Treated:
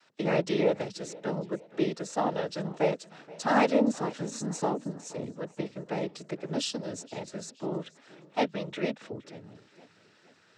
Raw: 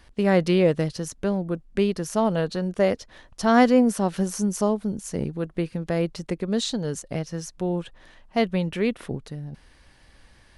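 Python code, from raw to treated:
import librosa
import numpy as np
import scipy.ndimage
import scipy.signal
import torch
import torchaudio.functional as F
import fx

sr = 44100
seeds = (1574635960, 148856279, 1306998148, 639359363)

y = scipy.signal.sosfilt(scipy.signal.bessel(2, 290.0, 'highpass', norm='mag', fs=sr, output='sos'), x)
y = fx.noise_vocoder(y, sr, seeds[0], bands=12)
y = fx.echo_warbled(y, sr, ms=472, feedback_pct=48, rate_hz=2.8, cents=116, wet_db=-21)
y = F.gain(torch.from_numpy(y), -4.0).numpy()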